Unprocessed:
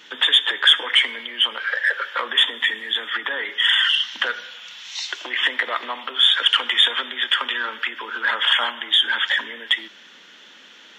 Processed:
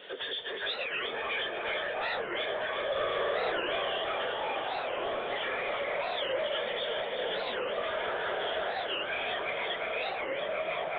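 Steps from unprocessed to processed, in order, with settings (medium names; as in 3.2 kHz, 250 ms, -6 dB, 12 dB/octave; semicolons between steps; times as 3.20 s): phase randomisation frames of 50 ms; ever faster or slower copies 356 ms, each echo -6 st, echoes 3; high-order bell 520 Hz +15.5 dB 1.1 oct; compression 2:1, threshold -37 dBFS, peak gain reduction 16.5 dB; saturation -27.5 dBFS, distortion -12 dB; 2.85–3.60 s: flutter echo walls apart 9.2 m, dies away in 1.4 s; resampled via 8 kHz; echo whose repeats swap between lows and highs 180 ms, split 1 kHz, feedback 90%, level -5.5 dB; warped record 45 rpm, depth 250 cents; trim -3 dB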